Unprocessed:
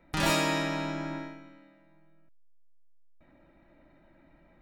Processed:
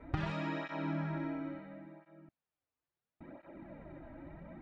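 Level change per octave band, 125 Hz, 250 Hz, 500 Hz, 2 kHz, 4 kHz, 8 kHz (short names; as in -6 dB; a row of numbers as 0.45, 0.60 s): -2.0 dB, -4.5 dB, -9.0 dB, -11.5 dB, -18.5 dB, under -30 dB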